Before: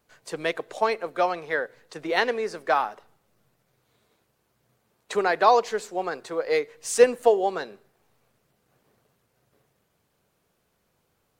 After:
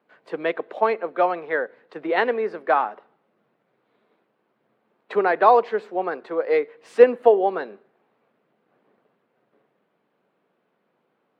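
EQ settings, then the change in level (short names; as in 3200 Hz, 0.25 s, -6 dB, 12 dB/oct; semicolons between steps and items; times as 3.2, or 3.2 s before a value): HPF 200 Hz 24 dB/oct; air absorption 470 m; +5.0 dB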